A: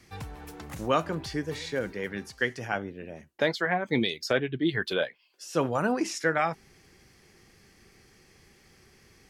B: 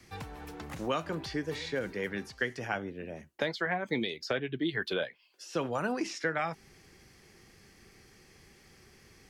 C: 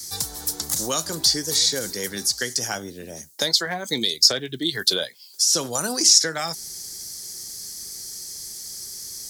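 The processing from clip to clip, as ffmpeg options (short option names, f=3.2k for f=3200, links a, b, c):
-filter_complex "[0:a]acrossover=split=190|2100|5400[a][b][c][d];[a]acompressor=threshold=-45dB:ratio=4[e];[b]acompressor=threshold=-30dB:ratio=4[f];[c]acompressor=threshold=-38dB:ratio=4[g];[d]acompressor=threshold=-58dB:ratio=4[h];[e][f][g][h]amix=inputs=4:normalize=0"
-af "aexciter=amount=13.5:drive=8.3:freq=4.1k,volume=3.5dB"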